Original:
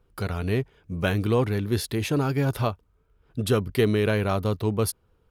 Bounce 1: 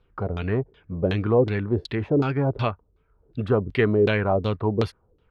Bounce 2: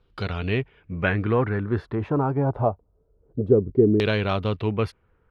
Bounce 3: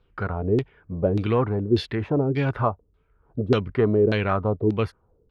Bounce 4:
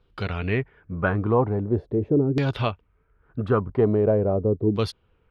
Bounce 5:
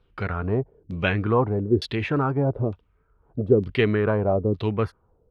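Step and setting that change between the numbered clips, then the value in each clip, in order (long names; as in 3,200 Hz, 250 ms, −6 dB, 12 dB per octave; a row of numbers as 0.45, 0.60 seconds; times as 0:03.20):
auto-filter low-pass, speed: 2.7, 0.25, 1.7, 0.42, 1.1 Hertz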